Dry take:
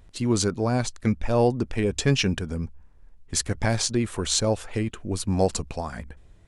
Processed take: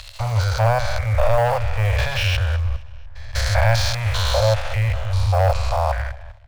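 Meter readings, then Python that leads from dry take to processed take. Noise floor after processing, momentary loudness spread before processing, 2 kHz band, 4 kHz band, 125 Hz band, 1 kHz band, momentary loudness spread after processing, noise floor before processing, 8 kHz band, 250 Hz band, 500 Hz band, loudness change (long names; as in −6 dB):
−38 dBFS, 10 LU, +8.5 dB, +3.5 dB, +8.5 dB, +9.5 dB, 7 LU, −52 dBFS, −5.5 dB, below −15 dB, +4.0 dB, +5.0 dB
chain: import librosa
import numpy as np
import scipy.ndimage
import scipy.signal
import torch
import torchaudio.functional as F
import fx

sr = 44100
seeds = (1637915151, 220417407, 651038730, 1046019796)

p1 = fx.spec_steps(x, sr, hold_ms=200)
p2 = fx.air_absorb(p1, sr, metres=290.0)
p3 = p2 + fx.echo_feedback(p2, sr, ms=232, feedback_pct=47, wet_db=-23.5, dry=0)
p4 = fx.leveller(p3, sr, passes=2)
p5 = fx.level_steps(p4, sr, step_db=16)
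p6 = p4 + (p5 * 10.0 ** (-1.0 / 20.0))
p7 = scipy.signal.sosfilt(scipy.signal.cheby1(4, 1.0, [110.0, 560.0], 'bandstop', fs=sr, output='sos'), p6)
p8 = fx.high_shelf(p7, sr, hz=6200.0, db=12.0)
y = p8 * 10.0 ** (6.5 / 20.0)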